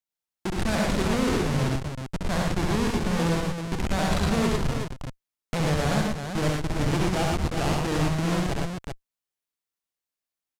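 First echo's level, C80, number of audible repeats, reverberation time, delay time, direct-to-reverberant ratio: -3.5 dB, no reverb, 4, no reverb, 66 ms, no reverb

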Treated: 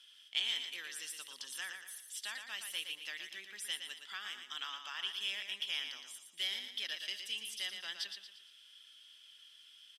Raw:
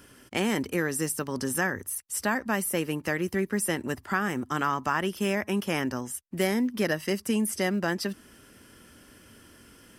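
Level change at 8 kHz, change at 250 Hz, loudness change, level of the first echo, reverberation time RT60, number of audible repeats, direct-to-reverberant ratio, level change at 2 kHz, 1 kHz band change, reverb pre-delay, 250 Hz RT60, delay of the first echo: -12.5 dB, -40.0 dB, -11.0 dB, -7.0 dB, no reverb, 4, no reverb, -11.5 dB, -21.5 dB, no reverb, no reverb, 116 ms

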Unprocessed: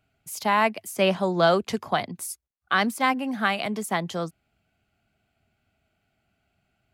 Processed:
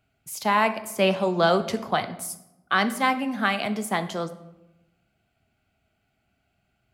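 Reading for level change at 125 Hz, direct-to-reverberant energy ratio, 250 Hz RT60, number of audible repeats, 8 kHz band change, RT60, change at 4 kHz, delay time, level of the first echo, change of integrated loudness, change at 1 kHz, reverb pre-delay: 0.0 dB, 9.5 dB, 1.2 s, no echo, +0.5 dB, 0.95 s, +0.5 dB, no echo, no echo, 0.0 dB, +0.5 dB, 7 ms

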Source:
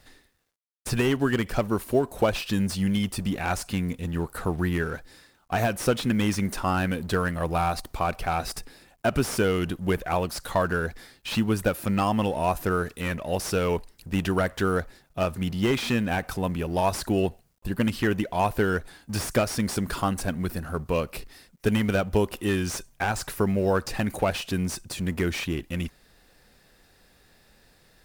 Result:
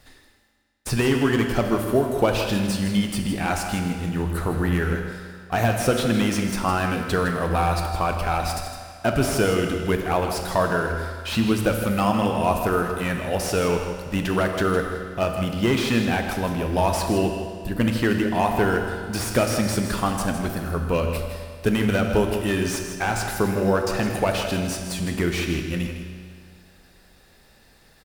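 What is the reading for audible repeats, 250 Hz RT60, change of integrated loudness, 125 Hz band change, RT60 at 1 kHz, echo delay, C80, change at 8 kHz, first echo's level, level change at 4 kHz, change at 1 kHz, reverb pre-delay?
1, 2.0 s, +3.5 dB, +3.0 dB, 2.0 s, 160 ms, 5.0 dB, +3.5 dB, -10.0 dB, +4.0 dB, +4.0 dB, 10 ms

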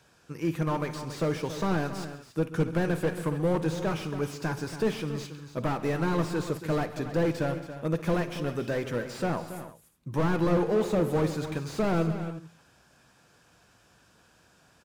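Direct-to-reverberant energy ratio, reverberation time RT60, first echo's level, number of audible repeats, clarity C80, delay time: no reverb, no reverb, -16.5 dB, 5, no reverb, 57 ms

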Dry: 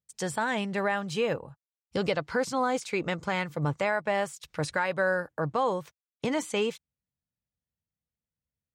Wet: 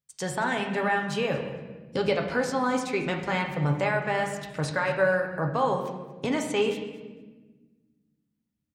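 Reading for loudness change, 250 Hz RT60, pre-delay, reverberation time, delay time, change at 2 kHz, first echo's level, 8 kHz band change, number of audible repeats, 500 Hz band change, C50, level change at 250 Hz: +2.0 dB, 2.3 s, 7 ms, 1.3 s, 227 ms, +2.5 dB, -18.0 dB, 0.0 dB, 1, +2.5 dB, 6.5 dB, +3.0 dB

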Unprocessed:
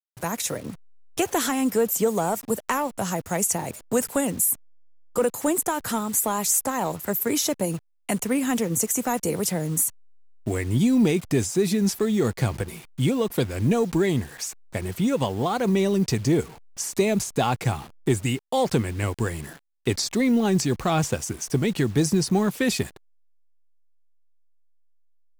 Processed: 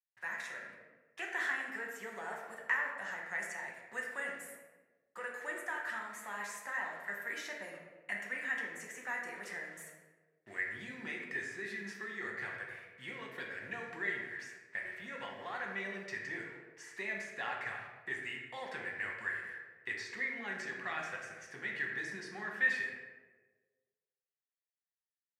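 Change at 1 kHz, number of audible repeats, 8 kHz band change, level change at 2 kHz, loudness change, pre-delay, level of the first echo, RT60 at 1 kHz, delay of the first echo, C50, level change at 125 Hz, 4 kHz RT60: -15.5 dB, no echo, -27.5 dB, -0.5 dB, -15.0 dB, 5 ms, no echo, 1.1 s, no echo, 2.5 dB, -32.0 dB, 0.70 s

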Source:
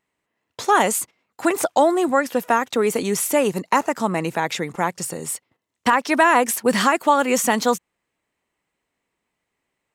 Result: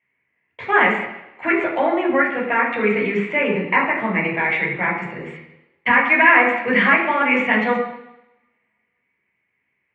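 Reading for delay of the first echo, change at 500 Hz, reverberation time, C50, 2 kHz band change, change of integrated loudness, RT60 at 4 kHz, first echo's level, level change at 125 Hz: no echo, -1.0 dB, 0.90 s, 4.5 dB, +8.5 dB, +2.5 dB, 0.90 s, no echo, +1.5 dB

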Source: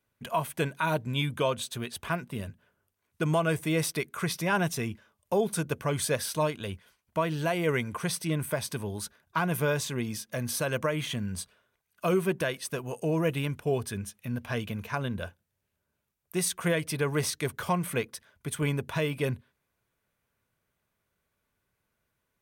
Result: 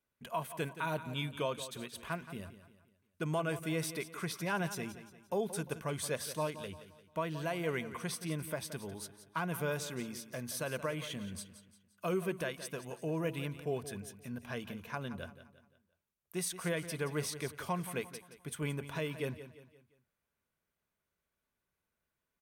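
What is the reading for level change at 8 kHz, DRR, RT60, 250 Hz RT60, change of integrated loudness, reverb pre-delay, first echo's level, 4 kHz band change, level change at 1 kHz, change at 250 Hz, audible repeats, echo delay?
-7.5 dB, no reverb, no reverb, no reverb, -8.0 dB, no reverb, -13.0 dB, -7.5 dB, -7.5 dB, -8.0 dB, 3, 174 ms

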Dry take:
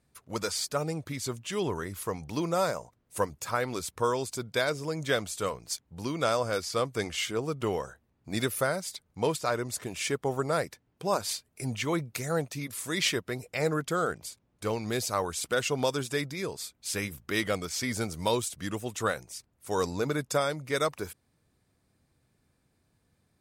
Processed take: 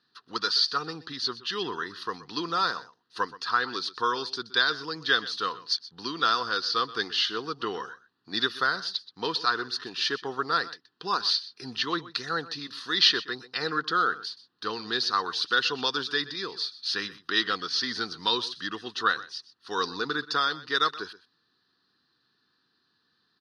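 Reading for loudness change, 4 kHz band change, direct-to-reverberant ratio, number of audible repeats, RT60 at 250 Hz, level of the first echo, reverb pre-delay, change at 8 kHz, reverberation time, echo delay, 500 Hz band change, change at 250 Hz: +3.5 dB, +10.0 dB, no reverb, 1, no reverb, -17.5 dB, no reverb, -9.0 dB, no reverb, 125 ms, -6.0 dB, -3.5 dB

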